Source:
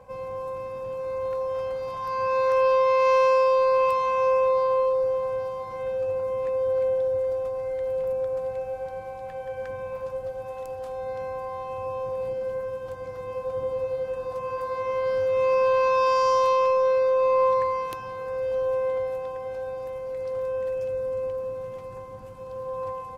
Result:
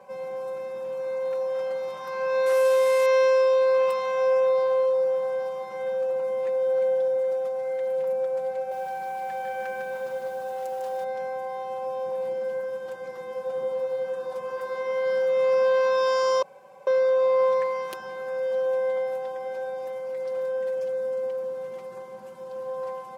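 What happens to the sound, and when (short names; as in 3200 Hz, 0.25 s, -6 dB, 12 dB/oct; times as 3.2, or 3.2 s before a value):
2.46–3.06 delta modulation 64 kbps, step -34.5 dBFS
8.56–11.04 lo-fi delay 0.152 s, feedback 35%, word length 9-bit, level -3.5 dB
16.42–16.87 room tone
whole clip: HPF 250 Hz 12 dB/oct; comb 5.2 ms, depth 80%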